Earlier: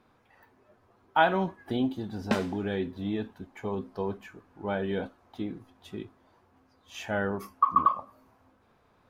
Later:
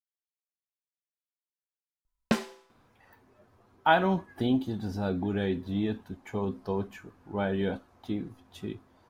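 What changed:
speech: entry +2.70 s
master: add bass and treble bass +4 dB, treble +4 dB

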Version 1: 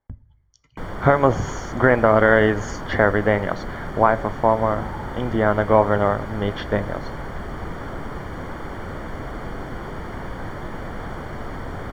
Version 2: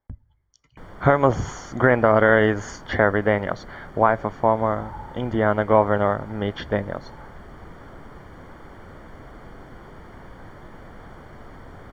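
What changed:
speech: send −8.0 dB
background −11.0 dB

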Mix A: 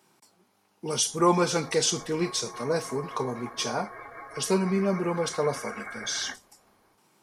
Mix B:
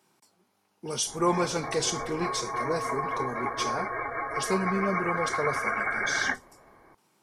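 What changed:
speech −3.5 dB
background +10.5 dB

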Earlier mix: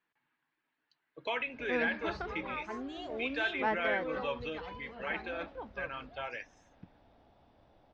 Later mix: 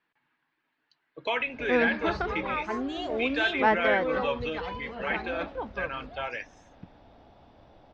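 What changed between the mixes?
speech +6.0 dB
background +9.0 dB

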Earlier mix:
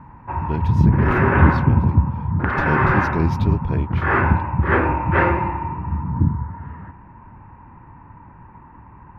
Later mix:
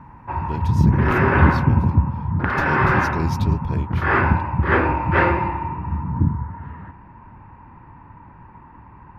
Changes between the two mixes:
speech −4.0 dB
master: add bass and treble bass −1 dB, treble +14 dB

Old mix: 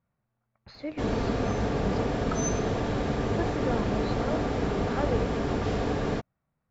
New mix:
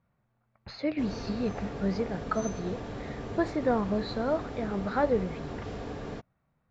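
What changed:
speech +5.5 dB
background −10.0 dB

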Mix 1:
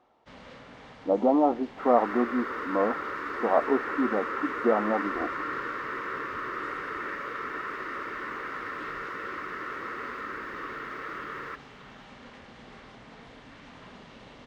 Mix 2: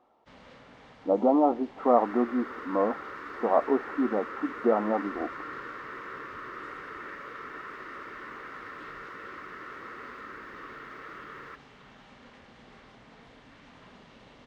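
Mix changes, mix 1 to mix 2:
first sound −4.5 dB
second sound −6.5 dB

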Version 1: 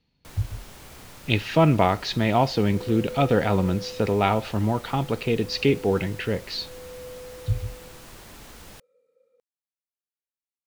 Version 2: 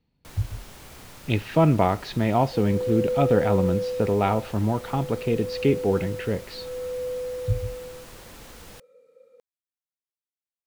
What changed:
speech: add high-shelf EQ 2,400 Hz −11.5 dB
second sound +10.5 dB

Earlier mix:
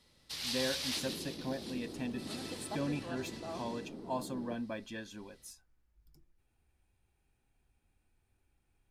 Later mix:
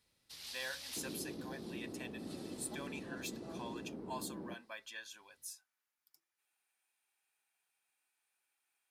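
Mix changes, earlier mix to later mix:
speech: add high-pass filter 1,100 Hz 12 dB per octave
first sound −12.0 dB
master: add high-shelf EQ 8,100 Hz +7 dB

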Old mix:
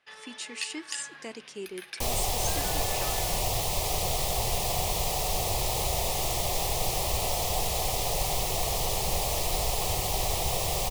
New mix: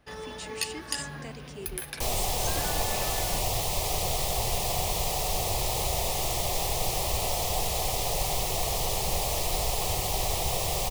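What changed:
speech −3.5 dB
first sound: remove resonant band-pass 2,600 Hz, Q 0.95

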